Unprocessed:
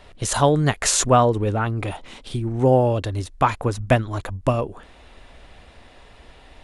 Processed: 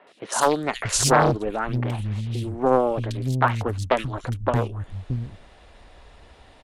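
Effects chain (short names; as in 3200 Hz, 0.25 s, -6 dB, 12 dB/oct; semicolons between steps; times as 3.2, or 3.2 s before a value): three bands offset in time mids, highs, lows 70/630 ms, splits 220/2500 Hz; added harmonics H 3 -25 dB, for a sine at -3 dBFS; Doppler distortion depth 0.64 ms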